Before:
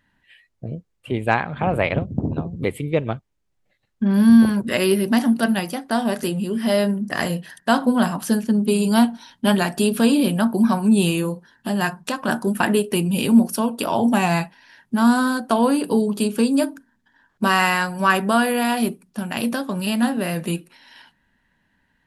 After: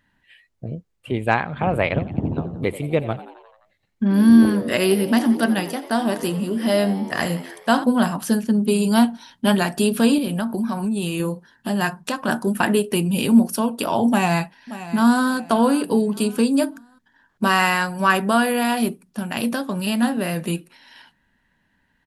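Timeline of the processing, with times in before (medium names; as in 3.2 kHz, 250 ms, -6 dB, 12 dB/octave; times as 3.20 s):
1.89–7.84 s: frequency-shifting echo 87 ms, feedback 62%, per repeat +85 Hz, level -16 dB
10.18–11.20 s: compression, threshold -20 dBFS
14.09–15.24 s: echo throw 580 ms, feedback 30%, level -14.5 dB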